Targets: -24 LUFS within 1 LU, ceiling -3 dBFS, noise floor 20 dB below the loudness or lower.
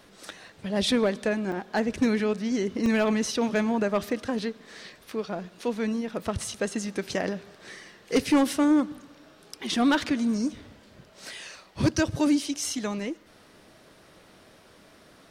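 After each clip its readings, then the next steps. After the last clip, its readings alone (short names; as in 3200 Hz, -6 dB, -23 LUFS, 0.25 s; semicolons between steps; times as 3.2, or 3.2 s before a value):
clipped 0.4%; flat tops at -15.5 dBFS; dropouts 3; longest dropout 1.9 ms; loudness -27.0 LUFS; peak -15.5 dBFS; loudness target -24.0 LUFS
-> clip repair -15.5 dBFS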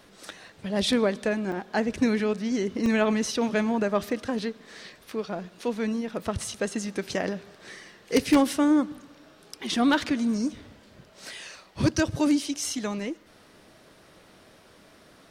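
clipped 0.0%; dropouts 3; longest dropout 1.9 ms
-> interpolate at 1.52/2.86/4.39, 1.9 ms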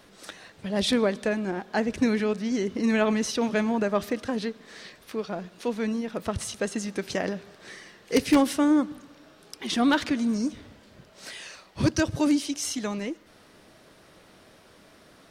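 dropouts 0; loudness -26.5 LUFS; peak -6.5 dBFS; loudness target -24.0 LUFS
-> gain +2.5 dB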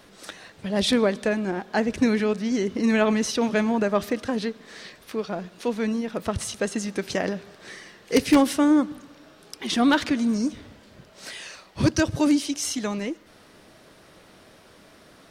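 loudness -24.0 LUFS; peak -4.0 dBFS; noise floor -53 dBFS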